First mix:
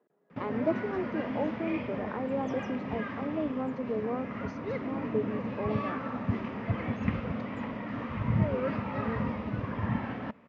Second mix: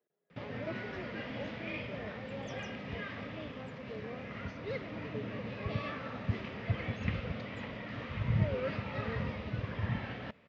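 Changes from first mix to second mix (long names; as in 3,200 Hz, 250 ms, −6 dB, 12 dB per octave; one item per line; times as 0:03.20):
speech −8.5 dB
master: add octave-band graphic EQ 250/1,000/4,000 Hz −10/−9/+7 dB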